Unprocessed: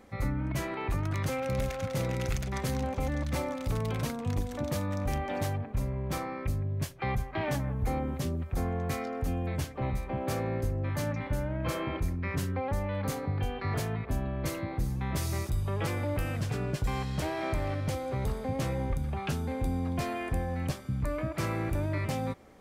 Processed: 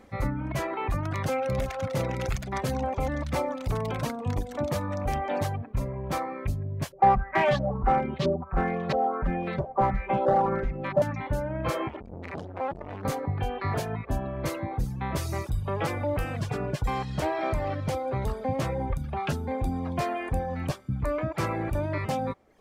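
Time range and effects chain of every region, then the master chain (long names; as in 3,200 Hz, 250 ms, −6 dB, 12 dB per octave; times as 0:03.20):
0:06.92–0:11.02: auto-filter low-pass saw up 1.5 Hz 550–4,200 Hz + hard clipping −24.5 dBFS + comb filter 5.2 ms, depth 85%
0:11.88–0:13.05: low-pass filter 3,800 Hz + hard clipping −29 dBFS + saturating transformer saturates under 370 Hz
whole clip: high-shelf EQ 6,600 Hz −4.5 dB; reverb reduction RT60 0.78 s; dynamic equaliser 790 Hz, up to +6 dB, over −48 dBFS, Q 0.79; level +2.5 dB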